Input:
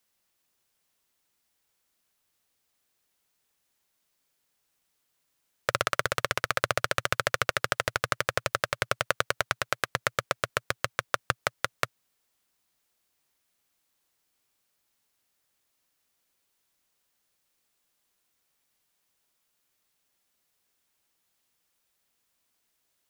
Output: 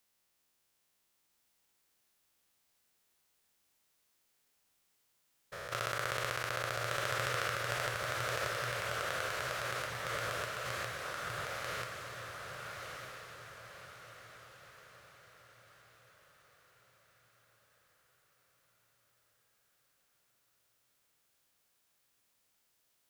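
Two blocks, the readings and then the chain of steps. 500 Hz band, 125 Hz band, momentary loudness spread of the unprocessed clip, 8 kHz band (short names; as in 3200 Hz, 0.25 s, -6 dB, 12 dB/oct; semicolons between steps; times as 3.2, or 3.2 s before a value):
-7.0 dB, -4.5 dB, 4 LU, -6.5 dB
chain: stepped spectrum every 0.2 s; diffused feedback echo 1.222 s, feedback 45%, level -4 dB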